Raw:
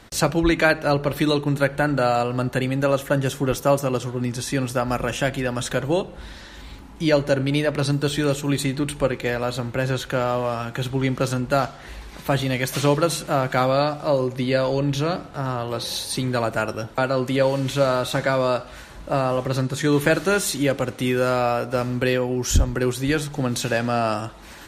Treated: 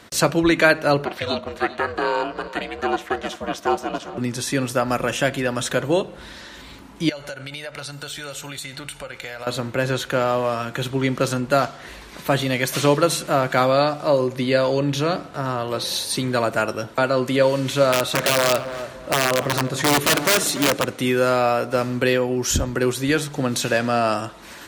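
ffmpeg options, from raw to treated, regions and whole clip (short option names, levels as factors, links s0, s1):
-filter_complex "[0:a]asettb=1/sr,asplit=3[s0][s1][s2];[s0]atrim=end=1.054[s3];[s1]atrim=start=1.05:end=4.18,asetpts=PTS-STARTPTS,afade=t=in:d=0.004:c=qsin,afade=t=out:st=3.126:d=0.004:c=qsin,acrossover=split=310 6100:gain=0.0891 1 0.2[s4][s5][s6];[s4][s5][s6]amix=inputs=3:normalize=0,aeval=exprs='val(0)*sin(2*PI*200*n/s)':c=same,aecho=1:1:395:0.141,atrim=end_sample=138033[s7];[s2]atrim=start=4.176[s8];[s3][s7]acrossfade=d=0.004:c1=hsin:c2=qsin[s9];[s9][s8]acrossfade=d=0.004:c1=qsin:c2=hsin,asettb=1/sr,asplit=3[s10][s11][s12];[s10]atrim=end=7.094[s13];[s11]atrim=start=7.09:end=9.47,asetpts=PTS-STARTPTS,afade=t=in:d=0.004:c=qsin,afade=t=out:st=2.376:d=0.004:c=qsin,equalizer=f=220:w=0.44:g=-13,aecho=1:1:1.4:0.42,atrim=end_sample=104958,acompressor=threshold=0.0316:ratio=16:attack=3.2:release=140:knee=1:detection=peak[s14];[s12]atrim=start=9.466[s15];[s13][s14]acrossfade=d=0.004:c1=hsin:c2=qsin[s16];[s16][s15]acrossfade=d=0.004:c1=qsin:c2=hsin,asettb=1/sr,asplit=3[s17][s18][s19];[s17]atrim=end=17.924[s20];[s18]atrim=start=17.92:end=20.85,asetpts=PTS-STARTPTS,afade=t=in:d=0.004:c=qsin,afade=t=out:st=2.926:d=0.004:c=qsin,highshelf=f=9300:g=-2.5,aeval=exprs='(mod(4.73*val(0)+1,2)-1)/4.73':c=same,asplit=2[s21][s22];[s22]adelay=291,lowpass=f=1200:p=1,volume=0.316,asplit=2[s23][s24];[s24]adelay=291,lowpass=f=1200:p=1,volume=0.37,asplit=2[s25][s26];[s26]adelay=291,lowpass=f=1200:p=1,volume=0.37,asplit=2[s27][s28];[s28]adelay=291,lowpass=f=1200:p=1,volume=0.37[s29];[s21][s23][s25][s27][s29]amix=inputs=5:normalize=0,atrim=end_sample=129213[s30];[s19]atrim=start=20.846[s31];[s20][s30]acrossfade=d=0.004:c1=hsin:c2=qsin[s32];[s32][s31]acrossfade=d=0.004:c1=qsin:c2=hsin,highpass=f=180:p=1,bandreject=f=810:w=12,volume=1.41"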